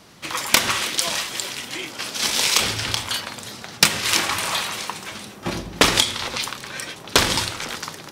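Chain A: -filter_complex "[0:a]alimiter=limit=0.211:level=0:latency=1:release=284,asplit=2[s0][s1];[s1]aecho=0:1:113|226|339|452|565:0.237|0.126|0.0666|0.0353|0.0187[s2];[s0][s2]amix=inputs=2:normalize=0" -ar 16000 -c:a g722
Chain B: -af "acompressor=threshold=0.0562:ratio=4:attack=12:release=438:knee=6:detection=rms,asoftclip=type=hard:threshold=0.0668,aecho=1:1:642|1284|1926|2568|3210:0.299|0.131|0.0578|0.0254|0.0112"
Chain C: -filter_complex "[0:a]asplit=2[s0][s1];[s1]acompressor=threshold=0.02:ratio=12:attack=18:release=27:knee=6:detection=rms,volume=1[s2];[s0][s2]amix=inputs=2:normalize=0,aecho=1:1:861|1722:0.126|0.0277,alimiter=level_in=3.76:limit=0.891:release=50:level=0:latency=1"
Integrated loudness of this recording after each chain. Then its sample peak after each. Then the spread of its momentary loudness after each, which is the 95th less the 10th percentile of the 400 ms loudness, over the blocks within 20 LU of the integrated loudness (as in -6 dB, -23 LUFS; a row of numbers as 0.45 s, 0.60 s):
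-27.5 LUFS, -30.5 LUFS, -12.0 LUFS; -10.0 dBFS, -20.5 dBFS, -1.0 dBFS; 7 LU, 5 LU, 6 LU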